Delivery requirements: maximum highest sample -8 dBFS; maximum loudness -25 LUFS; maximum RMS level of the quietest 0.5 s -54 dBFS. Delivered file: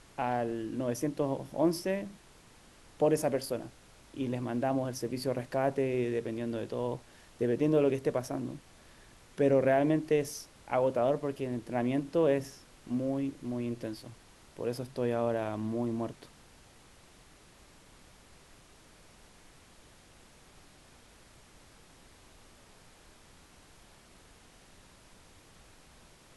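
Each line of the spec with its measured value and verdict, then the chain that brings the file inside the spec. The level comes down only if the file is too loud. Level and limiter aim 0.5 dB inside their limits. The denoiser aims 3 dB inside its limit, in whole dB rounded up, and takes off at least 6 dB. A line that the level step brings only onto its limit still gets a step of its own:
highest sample -14.5 dBFS: pass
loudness -32.0 LUFS: pass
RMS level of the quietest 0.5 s -58 dBFS: pass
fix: none needed

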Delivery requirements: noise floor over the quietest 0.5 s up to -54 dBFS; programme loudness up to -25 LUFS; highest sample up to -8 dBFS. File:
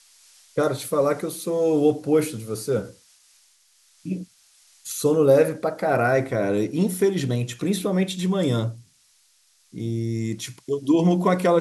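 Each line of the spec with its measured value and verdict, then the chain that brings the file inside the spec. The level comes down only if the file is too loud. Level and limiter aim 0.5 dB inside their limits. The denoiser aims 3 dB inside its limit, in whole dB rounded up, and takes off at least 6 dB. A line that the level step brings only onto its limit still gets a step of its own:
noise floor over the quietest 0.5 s -61 dBFS: pass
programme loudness -23.0 LUFS: fail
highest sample -7.0 dBFS: fail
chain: trim -2.5 dB

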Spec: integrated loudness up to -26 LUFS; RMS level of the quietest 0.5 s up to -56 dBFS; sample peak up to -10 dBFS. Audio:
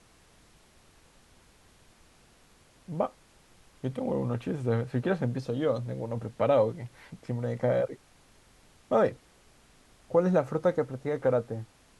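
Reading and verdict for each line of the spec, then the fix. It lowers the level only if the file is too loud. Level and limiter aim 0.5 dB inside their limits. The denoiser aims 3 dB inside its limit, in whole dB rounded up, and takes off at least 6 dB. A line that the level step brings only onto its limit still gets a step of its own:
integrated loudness -29.5 LUFS: pass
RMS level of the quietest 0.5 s -60 dBFS: pass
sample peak -12.0 dBFS: pass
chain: none needed

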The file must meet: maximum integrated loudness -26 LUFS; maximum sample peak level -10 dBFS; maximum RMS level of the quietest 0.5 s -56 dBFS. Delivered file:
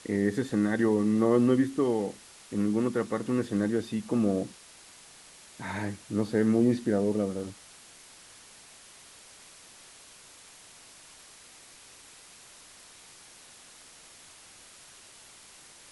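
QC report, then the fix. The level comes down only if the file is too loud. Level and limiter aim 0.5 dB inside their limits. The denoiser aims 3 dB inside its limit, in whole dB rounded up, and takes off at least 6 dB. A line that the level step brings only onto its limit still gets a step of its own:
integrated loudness -28.0 LUFS: pass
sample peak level -12.0 dBFS: pass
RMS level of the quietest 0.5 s -52 dBFS: fail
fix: noise reduction 7 dB, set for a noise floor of -52 dBFS

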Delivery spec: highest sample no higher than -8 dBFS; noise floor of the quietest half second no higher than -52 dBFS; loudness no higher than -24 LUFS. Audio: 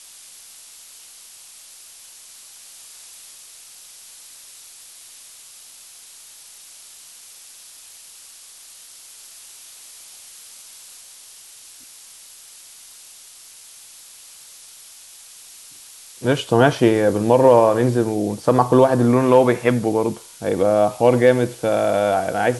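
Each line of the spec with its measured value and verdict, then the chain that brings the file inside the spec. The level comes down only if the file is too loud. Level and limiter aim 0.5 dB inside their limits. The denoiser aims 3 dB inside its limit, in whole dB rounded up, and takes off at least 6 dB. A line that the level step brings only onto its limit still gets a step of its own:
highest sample -1.5 dBFS: fail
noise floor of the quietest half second -44 dBFS: fail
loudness -17.0 LUFS: fail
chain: noise reduction 6 dB, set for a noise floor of -44 dBFS; trim -7.5 dB

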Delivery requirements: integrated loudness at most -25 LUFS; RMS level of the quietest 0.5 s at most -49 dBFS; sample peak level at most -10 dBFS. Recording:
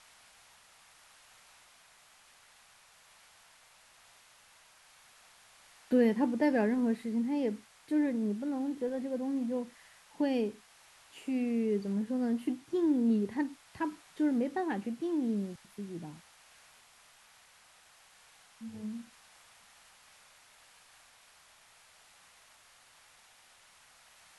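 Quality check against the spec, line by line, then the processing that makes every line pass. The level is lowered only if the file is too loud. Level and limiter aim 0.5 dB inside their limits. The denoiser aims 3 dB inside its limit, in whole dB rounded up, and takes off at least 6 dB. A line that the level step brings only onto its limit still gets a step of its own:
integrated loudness -32.5 LUFS: pass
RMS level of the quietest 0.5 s -61 dBFS: pass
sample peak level -15.5 dBFS: pass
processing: none needed

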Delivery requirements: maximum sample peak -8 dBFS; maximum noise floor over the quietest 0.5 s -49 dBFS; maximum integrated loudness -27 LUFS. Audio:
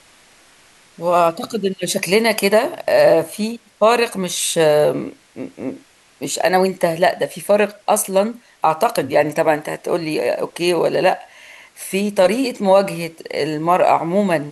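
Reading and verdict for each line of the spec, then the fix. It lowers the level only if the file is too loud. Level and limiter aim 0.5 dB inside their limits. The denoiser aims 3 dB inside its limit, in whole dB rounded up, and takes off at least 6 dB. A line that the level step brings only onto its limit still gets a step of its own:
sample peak -3.0 dBFS: fail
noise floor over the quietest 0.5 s -50 dBFS: pass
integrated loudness -17.5 LUFS: fail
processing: trim -10 dB

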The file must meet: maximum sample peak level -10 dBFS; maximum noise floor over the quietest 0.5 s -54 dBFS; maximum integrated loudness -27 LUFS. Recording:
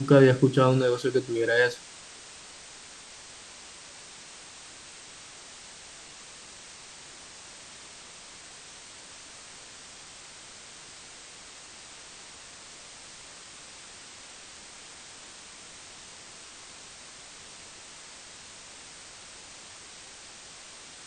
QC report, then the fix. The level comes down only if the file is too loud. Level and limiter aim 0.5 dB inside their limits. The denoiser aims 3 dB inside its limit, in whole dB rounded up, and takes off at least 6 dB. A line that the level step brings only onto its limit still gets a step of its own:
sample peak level -6.0 dBFS: fail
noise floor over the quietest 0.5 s -47 dBFS: fail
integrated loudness -23.0 LUFS: fail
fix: noise reduction 6 dB, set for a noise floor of -47 dBFS; trim -4.5 dB

